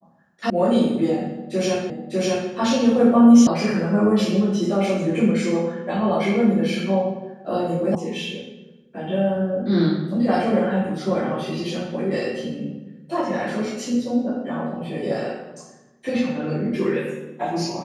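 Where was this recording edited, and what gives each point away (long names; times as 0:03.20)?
0:00.50: cut off before it has died away
0:01.90: the same again, the last 0.6 s
0:03.47: cut off before it has died away
0:07.95: cut off before it has died away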